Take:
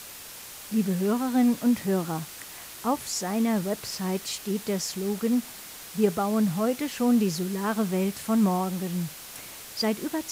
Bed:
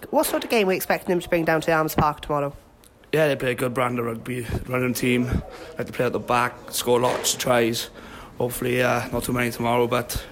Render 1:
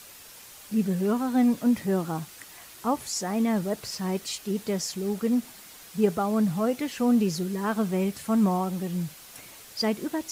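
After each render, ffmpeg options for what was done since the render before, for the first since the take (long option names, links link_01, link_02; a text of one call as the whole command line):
ffmpeg -i in.wav -af "afftdn=noise_reduction=6:noise_floor=-43" out.wav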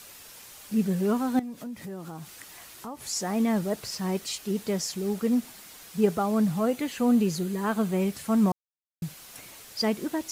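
ffmpeg -i in.wav -filter_complex "[0:a]asettb=1/sr,asplit=3[link_01][link_02][link_03];[link_01]atrim=end=1.394[link_04];[link_02]atrim=start=1.39:end=3.04,asetpts=PTS-STARTPTS,afade=type=in:duration=0.004:curve=qsin,afade=type=out:start_time=1.646:duration=0.004:curve=qsin,acompressor=threshold=-37dB:ratio=4:attack=3.2:release=140:knee=1:detection=peak[link_05];[link_03]atrim=start=3.036[link_06];[link_04][link_05]acrossfade=duration=0.004:curve1=hsin:curve2=qsin[link_07];[link_07][link_06]acrossfade=duration=0.004:curve1=qsin:curve2=hsin,asettb=1/sr,asplit=3[link_08][link_09][link_10];[link_08]atrim=end=6.594[link_11];[link_09]atrim=start=6.59:end=8.01,asetpts=PTS-STARTPTS,afade=type=in:duration=0.004:curve=qsin,afade=type=out:start_time=1.416:duration=0.004:curve=qsin,bandreject=frequency=5400:width=8.5[link_12];[link_10]atrim=start=8.006[link_13];[link_11][link_12]acrossfade=duration=0.004:curve1=hsin:curve2=qsin[link_14];[link_14][link_13]acrossfade=duration=0.004:curve1=qsin:curve2=hsin,asplit=3[link_15][link_16][link_17];[link_15]atrim=end=8.52,asetpts=PTS-STARTPTS,afade=type=out:start_time=8.516:duration=0.004:curve=hsin[link_18];[link_16]atrim=start=8.52:end=9.02,asetpts=PTS-STARTPTS,volume=0[link_19];[link_17]atrim=start=9.02,asetpts=PTS-STARTPTS,afade=type=in:duration=0.004:curve=hsin[link_20];[link_18][link_19][link_20]concat=n=3:v=0:a=1" out.wav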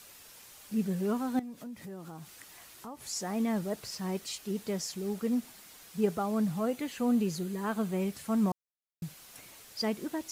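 ffmpeg -i in.wav -af "volume=-5.5dB" out.wav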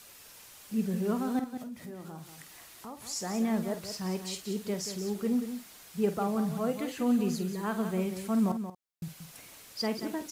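ffmpeg -i in.wav -filter_complex "[0:a]asplit=2[link_01][link_02];[link_02]adelay=49,volume=-10.5dB[link_03];[link_01][link_03]amix=inputs=2:normalize=0,aecho=1:1:181:0.335" out.wav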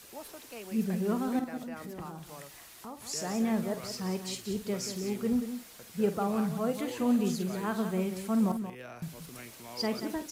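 ffmpeg -i in.wav -i bed.wav -filter_complex "[1:a]volume=-25dB[link_01];[0:a][link_01]amix=inputs=2:normalize=0" out.wav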